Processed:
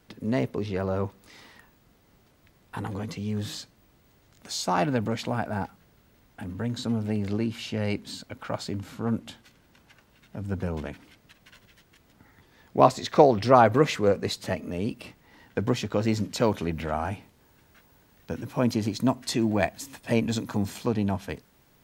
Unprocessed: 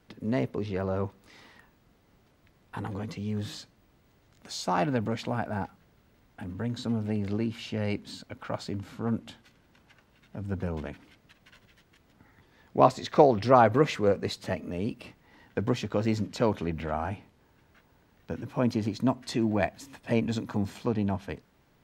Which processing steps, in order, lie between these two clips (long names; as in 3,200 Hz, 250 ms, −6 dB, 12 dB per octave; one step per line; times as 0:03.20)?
high-shelf EQ 5,800 Hz +7 dB, from 0:16.20 +12 dB
level +2 dB